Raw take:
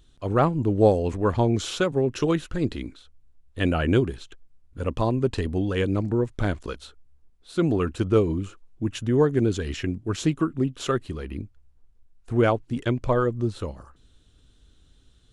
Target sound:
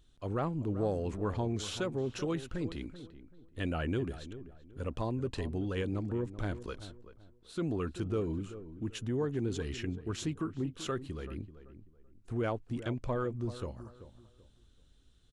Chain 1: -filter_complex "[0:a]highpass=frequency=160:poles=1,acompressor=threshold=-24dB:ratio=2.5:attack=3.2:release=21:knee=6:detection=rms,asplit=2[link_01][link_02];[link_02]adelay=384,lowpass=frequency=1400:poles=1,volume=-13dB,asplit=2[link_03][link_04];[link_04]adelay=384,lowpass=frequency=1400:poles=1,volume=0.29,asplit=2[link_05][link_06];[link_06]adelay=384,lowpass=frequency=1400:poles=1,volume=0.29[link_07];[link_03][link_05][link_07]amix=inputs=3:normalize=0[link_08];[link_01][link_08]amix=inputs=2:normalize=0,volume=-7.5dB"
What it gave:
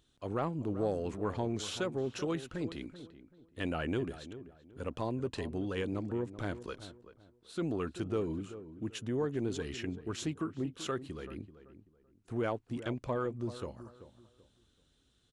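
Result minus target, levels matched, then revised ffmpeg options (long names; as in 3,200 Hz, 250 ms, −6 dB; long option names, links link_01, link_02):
125 Hz band −3.0 dB
-filter_complex "[0:a]acompressor=threshold=-24dB:ratio=2.5:attack=3.2:release=21:knee=6:detection=rms,asplit=2[link_01][link_02];[link_02]adelay=384,lowpass=frequency=1400:poles=1,volume=-13dB,asplit=2[link_03][link_04];[link_04]adelay=384,lowpass=frequency=1400:poles=1,volume=0.29,asplit=2[link_05][link_06];[link_06]adelay=384,lowpass=frequency=1400:poles=1,volume=0.29[link_07];[link_03][link_05][link_07]amix=inputs=3:normalize=0[link_08];[link_01][link_08]amix=inputs=2:normalize=0,volume=-7.5dB"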